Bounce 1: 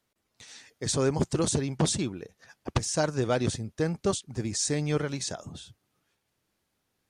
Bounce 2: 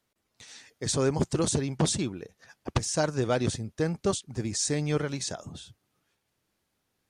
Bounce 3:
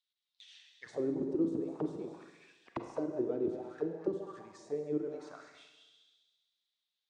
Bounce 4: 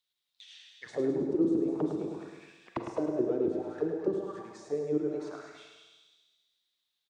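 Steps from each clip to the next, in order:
no processing that can be heard
echo machine with several playback heads 67 ms, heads all three, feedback 56%, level −15.5 dB; envelope filter 320–3,700 Hz, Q 5.3, down, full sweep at −22 dBFS; four-comb reverb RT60 1.1 s, combs from 33 ms, DRR 7 dB
repeating echo 106 ms, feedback 51%, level −7 dB; level +4 dB

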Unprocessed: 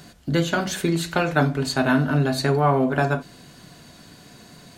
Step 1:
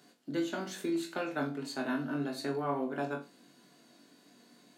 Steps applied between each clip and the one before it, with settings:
four-pole ladder high-pass 210 Hz, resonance 40%
on a send: flutter between parallel walls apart 3.6 metres, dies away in 0.24 s
on the sum: level −8 dB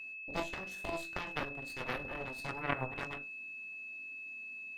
harmonic generator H 3 −8 dB, 4 −17 dB, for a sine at −20.5 dBFS
steady tone 2,600 Hz −47 dBFS
level +4 dB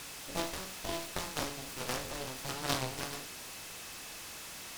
peak hold with a decay on every bin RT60 0.46 s
short delay modulated by noise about 3,200 Hz, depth 0.11 ms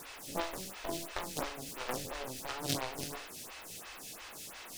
phaser with staggered stages 2.9 Hz
level +2 dB

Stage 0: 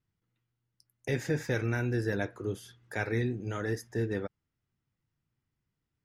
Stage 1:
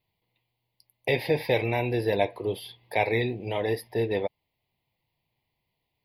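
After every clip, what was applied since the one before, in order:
drawn EQ curve 280 Hz 0 dB, 650 Hz +14 dB, 1,000 Hz +13 dB, 1,400 Hz −16 dB, 2,100 Hz +13 dB, 4,600 Hz +12 dB, 7,000 Hz −29 dB, 11,000 Hz +9 dB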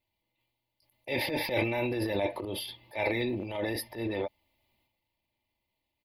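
comb filter 3.4 ms, depth 63%
transient designer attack −10 dB, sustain +9 dB
level −4.5 dB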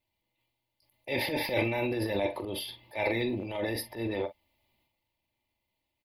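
double-tracking delay 44 ms −13 dB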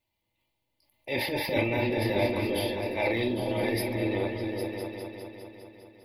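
echo whose low-pass opens from repeat to repeat 202 ms, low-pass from 200 Hz, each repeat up 2 octaves, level 0 dB
level +1 dB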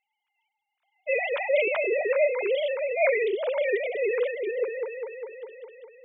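three sine waves on the formant tracks
level +3 dB

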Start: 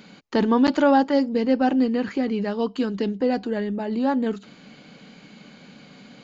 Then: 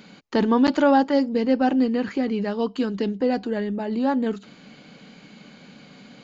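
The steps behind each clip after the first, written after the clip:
no processing that can be heard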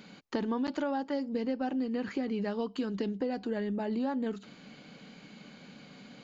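downward compressor 10 to 1, threshold −24 dBFS, peak gain reduction 11.5 dB
level −4.5 dB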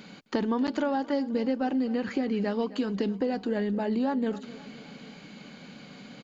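repeating echo 261 ms, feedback 56%, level −18 dB
level +4.5 dB

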